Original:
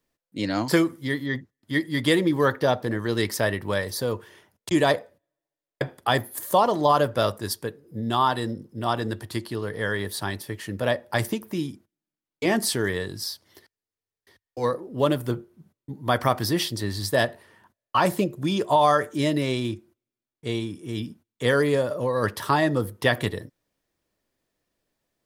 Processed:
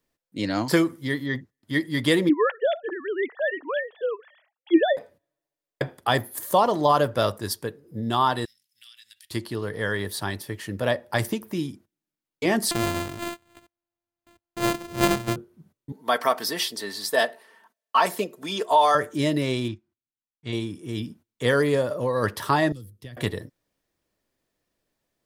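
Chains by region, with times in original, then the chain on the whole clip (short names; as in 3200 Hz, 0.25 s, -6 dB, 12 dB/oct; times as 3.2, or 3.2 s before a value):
2.29–4.97 sine-wave speech + HPF 200 Hz
8.45–9.31 inverse Chebyshev high-pass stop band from 940 Hz, stop band 50 dB + compressor 10:1, threshold -45 dBFS
12.71–15.36 sample sorter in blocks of 128 samples + careless resampling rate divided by 8×, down none, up hold
15.92–18.95 HPF 410 Hz + comb 4.5 ms, depth 53%
19.68–20.53 LPF 5100 Hz + bell 460 Hz -12.5 dB 0.58 oct + upward expander, over -53 dBFS
22.72–23.17 passive tone stack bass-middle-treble 10-0-1 + three-band squash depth 100%
whole clip: dry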